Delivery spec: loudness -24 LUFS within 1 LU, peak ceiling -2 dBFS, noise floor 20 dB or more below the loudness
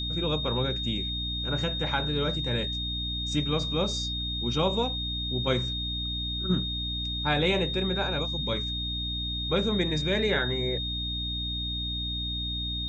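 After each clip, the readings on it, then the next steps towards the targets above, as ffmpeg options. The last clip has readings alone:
hum 60 Hz; highest harmonic 300 Hz; hum level -33 dBFS; steady tone 3.7 kHz; tone level -31 dBFS; loudness -28.0 LUFS; peak level -12.0 dBFS; loudness target -24.0 LUFS
-> -af "bandreject=f=60:t=h:w=6,bandreject=f=120:t=h:w=6,bandreject=f=180:t=h:w=6,bandreject=f=240:t=h:w=6,bandreject=f=300:t=h:w=6"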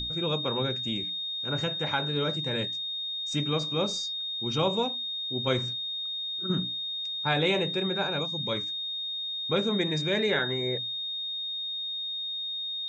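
hum not found; steady tone 3.7 kHz; tone level -31 dBFS
-> -af "bandreject=f=3700:w=30"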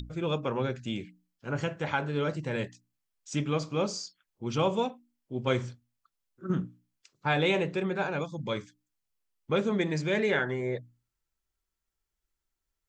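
steady tone not found; loudness -31.0 LUFS; peak level -13.5 dBFS; loudness target -24.0 LUFS
-> -af "volume=2.24"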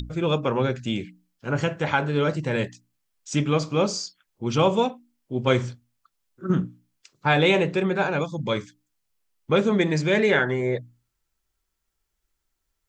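loudness -24.0 LUFS; peak level -6.5 dBFS; noise floor -79 dBFS

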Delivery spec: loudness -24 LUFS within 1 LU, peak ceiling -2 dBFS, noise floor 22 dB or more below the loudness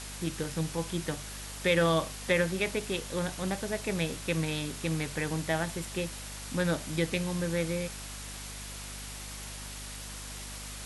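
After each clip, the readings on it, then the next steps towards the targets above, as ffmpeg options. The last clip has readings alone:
hum 50 Hz; highest harmonic 250 Hz; hum level -43 dBFS; noise floor -42 dBFS; noise floor target -55 dBFS; loudness -32.5 LUFS; peak level -13.5 dBFS; loudness target -24.0 LUFS
-> -af "bandreject=f=50:t=h:w=4,bandreject=f=100:t=h:w=4,bandreject=f=150:t=h:w=4,bandreject=f=200:t=h:w=4,bandreject=f=250:t=h:w=4"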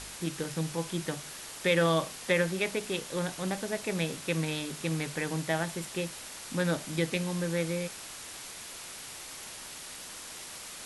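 hum not found; noise floor -44 dBFS; noise floor target -55 dBFS
-> -af "afftdn=nr=11:nf=-44"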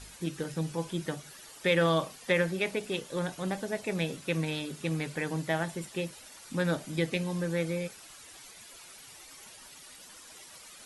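noise floor -51 dBFS; noise floor target -54 dBFS
-> -af "afftdn=nr=6:nf=-51"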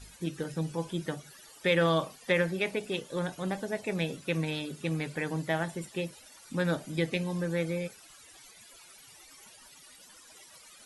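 noise floor -55 dBFS; loudness -32.0 LUFS; peak level -13.5 dBFS; loudness target -24.0 LUFS
-> -af "volume=2.51"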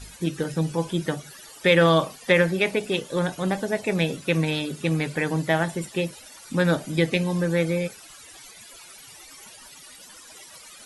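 loudness -24.0 LUFS; peak level -5.5 dBFS; noise floor -47 dBFS

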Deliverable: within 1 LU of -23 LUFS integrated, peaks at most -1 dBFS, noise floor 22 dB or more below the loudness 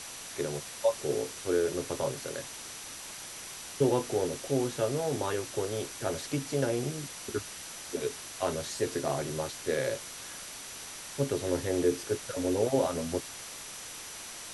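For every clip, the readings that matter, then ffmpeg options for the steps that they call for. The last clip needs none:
steady tone 5.9 kHz; tone level -50 dBFS; noise floor -44 dBFS; noise floor target -55 dBFS; loudness -33.0 LUFS; peak level -14.0 dBFS; loudness target -23.0 LUFS
-> -af "bandreject=f=5900:w=30"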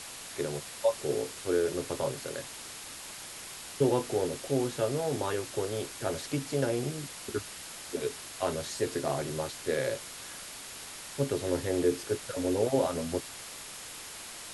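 steady tone not found; noise floor -44 dBFS; noise floor target -55 dBFS
-> -af "afftdn=nr=11:nf=-44"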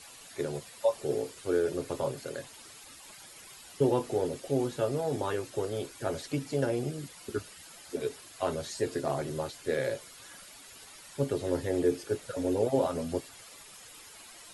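noise floor -51 dBFS; noise floor target -55 dBFS
-> -af "afftdn=nr=6:nf=-51"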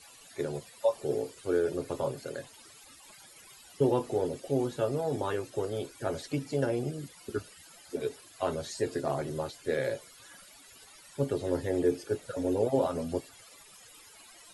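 noise floor -54 dBFS; noise floor target -55 dBFS
-> -af "afftdn=nr=6:nf=-54"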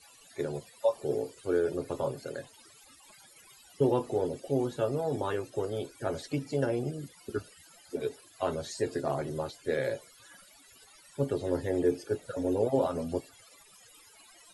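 noise floor -57 dBFS; loudness -32.5 LUFS; peak level -14.0 dBFS; loudness target -23.0 LUFS
-> -af "volume=2.99"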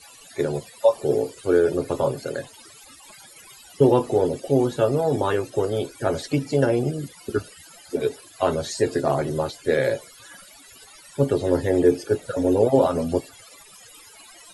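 loudness -23.0 LUFS; peak level -4.5 dBFS; noise floor -48 dBFS

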